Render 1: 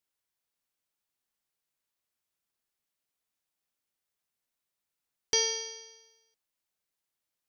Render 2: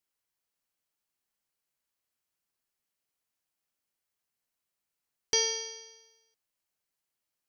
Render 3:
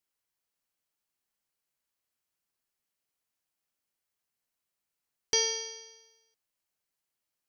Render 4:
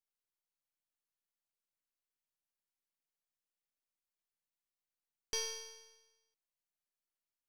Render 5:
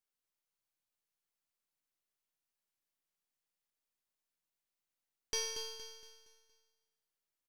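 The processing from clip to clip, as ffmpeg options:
-af "bandreject=f=3.6k:w=16"
-af anull
-af "aeval=exprs='if(lt(val(0),0),0.447*val(0),val(0))':c=same,volume=-8.5dB"
-af "aecho=1:1:233|466|699|932|1165:0.447|0.183|0.0751|0.0308|0.0126,volume=1dB"

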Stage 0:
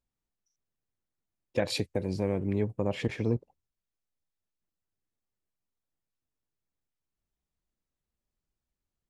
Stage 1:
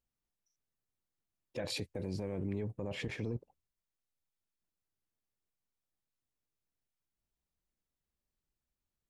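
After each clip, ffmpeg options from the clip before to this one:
-af "alimiter=level_in=1.5dB:limit=-24dB:level=0:latency=1:release=15,volume=-1.5dB,volume=-3dB"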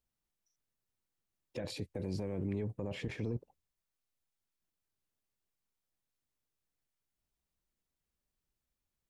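-filter_complex "[0:a]acrossover=split=440[a][b];[b]acompressor=threshold=-44dB:ratio=6[c];[a][c]amix=inputs=2:normalize=0,volume=1dB"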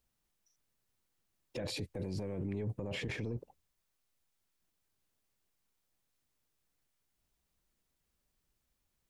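-af "alimiter=level_in=13dB:limit=-24dB:level=0:latency=1:release=21,volume=-13dB,volume=6.5dB"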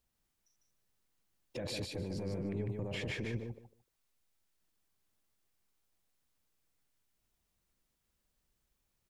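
-af "aecho=1:1:150|300|450:0.631|0.107|0.0182,volume=-1dB"

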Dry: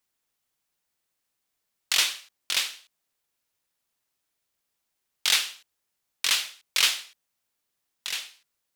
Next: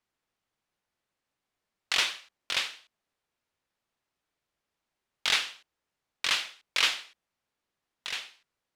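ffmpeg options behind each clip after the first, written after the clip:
-af "aemphasis=mode=reproduction:type=75fm,volume=1.5dB"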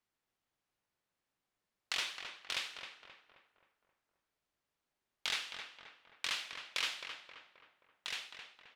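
-filter_complex "[0:a]acompressor=threshold=-34dB:ratio=2,asplit=2[a][b];[b]adelay=265,lowpass=f=2.1k:p=1,volume=-6dB,asplit=2[c][d];[d]adelay=265,lowpass=f=2.1k:p=1,volume=0.52,asplit=2[e][f];[f]adelay=265,lowpass=f=2.1k:p=1,volume=0.52,asplit=2[g][h];[h]adelay=265,lowpass=f=2.1k:p=1,volume=0.52,asplit=2[i][j];[j]adelay=265,lowpass=f=2.1k:p=1,volume=0.52,asplit=2[k][l];[l]adelay=265,lowpass=f=2.1k:p=1,volume=0.52[m];[c][e][g][i][k][m]amix=inputs=6:normalize=0[n];[a][n]amix=inputs=2:normalize=0,volume=-4dB"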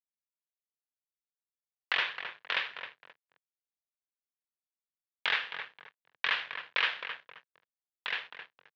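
-af "aeval=exprs='sgn(val(0))*max(abs(val(0))-0.00224,0)':c=same,acompressor=mode=upward:threshold=-55dB:ratio=2.5,highpass=f=130:w=0.5412,highpass=f=130:w=1.3066,equalizer=f=210:t=q:w=4:g=-8,equalizer=f=310:t=q:w=4:g=-7,equalizer=f=480:t=q:w=4:g=4,equalizer=f=1k:t=q:w=4:g=4,equalizer=f=1.7k:t=q:w=4:g=8,lowpass=f=3.3k:w=0.5412,lowpass=f=3.3k:w=1.3066,volume=8dB"

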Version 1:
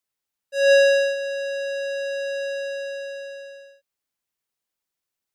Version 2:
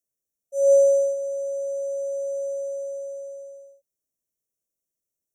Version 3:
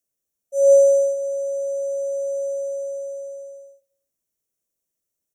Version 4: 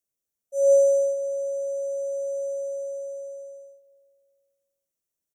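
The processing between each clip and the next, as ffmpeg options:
-af "afftfilt=real='re*(1-between(b*sr/4096,690,5400))':imag='im*(1-between(b*sr/4096,690,5400))':win_size=4096:overlap=0.75"
-filter_complex "[0:a]asplit=2[a][b];[b]adelay=98,lowpass=f=2k:p=1,volume=-15dB,asplit=2[c][d];[d]adelay=98,lowpass=f=2k:p=1,volume=0.38,asplit=2[e][f];[f]adelay=98,lowpass=f=2k:p=1,volume=0.38[g];[a][c][e][g]amix=inputs=4:normalize=0,volume=4dB"
-filter_complex "[0:a]asplit=2[a][b];[b]adelay=375,lowpass=f=2k:p=1,volume=-24dB,asplit=2[c][d];[d]adelay=375,lowpass=f=2k:p=1,volume=0.51,asplit=2[e][f];[f]adelay=375,lowpass=f=2k:p=1,volume=0.51[g];[a][c][e][g]amix=inputs=4:normalize=0,volume=-4.5dB"

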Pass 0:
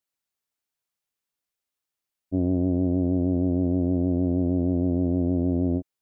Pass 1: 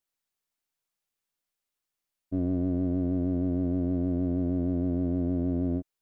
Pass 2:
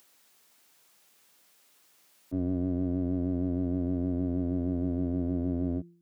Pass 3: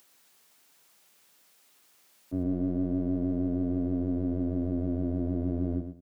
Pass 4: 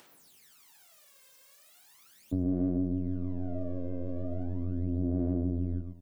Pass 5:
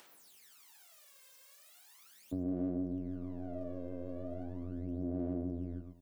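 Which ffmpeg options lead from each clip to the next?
-filter_complex "[0:a]aeval=exprs='if(lt(val(0),0),0.708*val(0),val(0))':c=same,asplit=2[a][b];[b]alimiter=level_in=0.5dB:limit=-24dB:level=0:latency=1,volume=-0.5dB,volume=2.5dB[c];[a][c]amix=inputs=2:normalize=0,volume=-6.5dB"
-filter_complex "[0:a]bandreject=f=171.6:t=h:w=4,bandreject=f=343.2:t=h:w=4,acrossover=split=130[a][b];[b]acompressor=mode=upward:threshold=-40dB:ratio=2.5[c];[a][c]amix=inputs=2:normalize=0,volume=-2dB"
-af "aecho=1:1:115|230|345:0.376|0.0752|0.015"
-af "aphaser=in_gain=1:out_gain=1:delay=1.9:decay=0.74:speed=0.38:type=sinusoidal,acompressor=threshold=-31dB:ratio=2.5"
-af "lowshelf=f=240:g=-11,volume=-1dB"

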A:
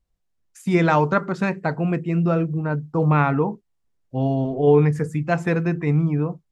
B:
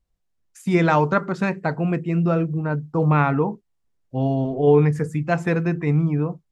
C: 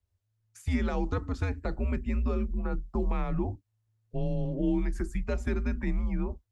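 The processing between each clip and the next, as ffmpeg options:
-af anull
-filter_complex "[0:a]acrossover=split=490|3100[a][b][c];[a]acompressor=threshold=-21dB:ratio=4[d];[b]acompressor=threshold=-35dB:ratio=4[e];[c]acompressor=threshold=-44dB:ratio=4[f];[d][e][f]amix=inputs=3:normalize=0,afreqshift=-110,volume=-4.5dB"

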